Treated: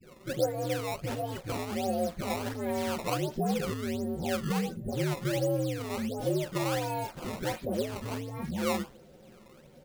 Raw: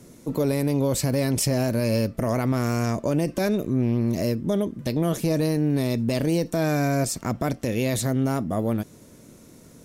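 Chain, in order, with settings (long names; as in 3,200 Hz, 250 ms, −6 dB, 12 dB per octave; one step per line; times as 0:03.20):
partials spread apart or drawn together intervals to 127%
0:03.35–0:05.84: low-shelf EQ 200 Hz +6.5 dB
0:08.28–0:08.60: gain on a spectral selection 260–8,400 Hz −7 dB
downward compressor, threshold −26 dBFS, peak gain reduction 10 dB
parametric band 500 Hz +11 dB 0.45 octaves
comb filter 5.4 ms, depth 60%
all-pass dispersion highs, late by 119 ms, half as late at 1,100 Hz
sample-and-hold swept by an LFO 16×, swing 160% 1.4 Hz
level −4.5 dB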